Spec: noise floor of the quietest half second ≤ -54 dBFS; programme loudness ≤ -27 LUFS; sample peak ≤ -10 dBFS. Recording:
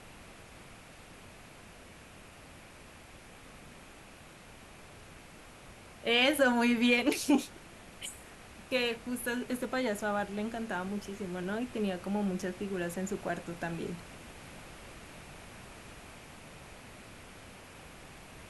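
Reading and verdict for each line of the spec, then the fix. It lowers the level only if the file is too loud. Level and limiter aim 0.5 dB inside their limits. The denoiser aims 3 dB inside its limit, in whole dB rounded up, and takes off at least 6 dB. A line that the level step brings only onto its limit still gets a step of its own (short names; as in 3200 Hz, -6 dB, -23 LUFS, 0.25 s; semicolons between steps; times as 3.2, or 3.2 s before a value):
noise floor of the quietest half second -53 dBFS: fail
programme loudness -32.0 LUFS: OK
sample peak -14.5 dBFS: OK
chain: denoiser 6 dB, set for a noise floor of -53 dBFS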